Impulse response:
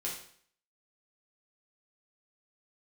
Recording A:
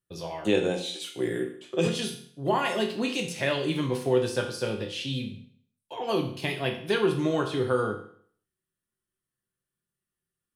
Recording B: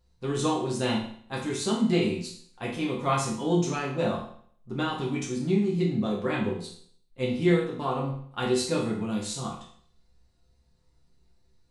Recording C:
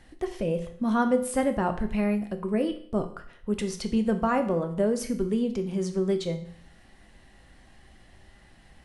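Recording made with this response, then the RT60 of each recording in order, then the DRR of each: B; 0.55 s, 0.55 s, 0.55 s; 1.5 dB, -4.5 dB, 6.0 dB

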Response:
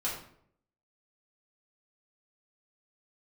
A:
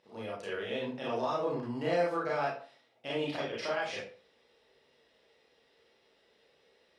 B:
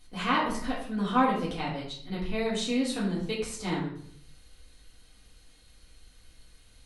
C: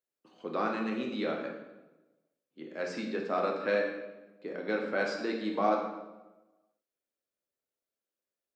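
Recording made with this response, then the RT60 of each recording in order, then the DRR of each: B; 0.40 s, 0.65 s, 1.1 s; -6.5 dB, -7.5 dB, -0.5 dB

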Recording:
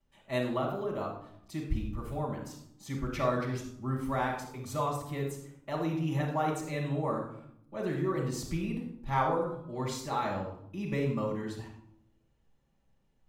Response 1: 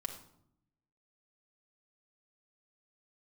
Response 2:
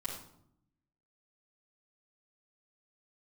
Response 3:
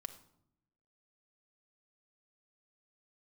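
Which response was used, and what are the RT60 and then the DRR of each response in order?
2; 0.70 s, 0.70 s, 0.75 s; 2.0 dB, -8.0 dB, 7.0 dB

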